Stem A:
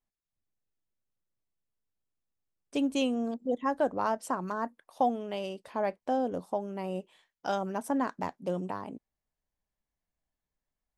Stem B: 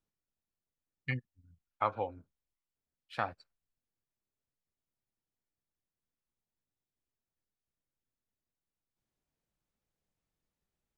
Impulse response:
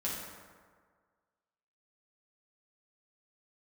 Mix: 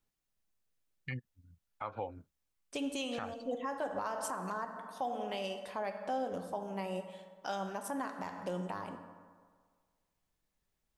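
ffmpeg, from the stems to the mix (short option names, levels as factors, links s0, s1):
-filter_complex "[0:a]equalizer=f=210:w=0.34:g=-10,volume=1.06,asplit=2[s0][s1];[s1]volume=0.422[s2];[1:a]volume=1.26[s3];[2:a]atrim=start_sample=2205[s4];[s2][s4]afir=irnorm=-1:irlink=0[s5];[s0][s3][s5]amix=inputs=3:normalize=0,alimiter=level_in=1.41:limit=0.0631:level=0:latency=1:release=166,volume=0.708"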